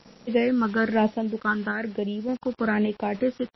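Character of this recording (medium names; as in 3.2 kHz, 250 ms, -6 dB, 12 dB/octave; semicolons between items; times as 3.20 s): phasing stages 8, 1.1 Hz, lowest notch 680–1500 Hz; a quantiser's noise floor 8-bit, dither none; random-step tremolo; MP3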